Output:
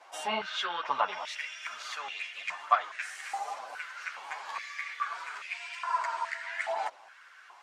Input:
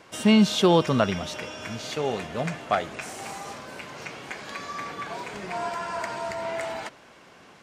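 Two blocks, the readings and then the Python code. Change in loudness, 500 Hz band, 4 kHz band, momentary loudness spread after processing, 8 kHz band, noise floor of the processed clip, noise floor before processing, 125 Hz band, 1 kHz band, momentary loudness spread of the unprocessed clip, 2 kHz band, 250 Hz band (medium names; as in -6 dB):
-7.5 dB, -14.5 dB, -7.0 dB, 10 LU, -8.5 dB, -55 dBFS, -52 dBFS, under -30 dB, -1.0 dB, 18 LU, -1.0 dB, under -25 dB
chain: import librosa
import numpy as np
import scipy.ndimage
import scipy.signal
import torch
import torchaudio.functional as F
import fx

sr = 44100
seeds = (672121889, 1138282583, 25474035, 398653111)

y = fx.env_lowpass_down(x, sr, base_hz=2700.0, full_db=-16.0)
y = fx.chorus_voices(y, sr, voices=2, hz=1.1, base_ms=10, depth_ms=3.3, mix_pct=55)
y = fx.filter_held_highpass(y, sr, hz=2.4, low_hz=770.0, high_hz=2400.0)
y = F.gain(torch.from_numpy(y), -3.5).numpy()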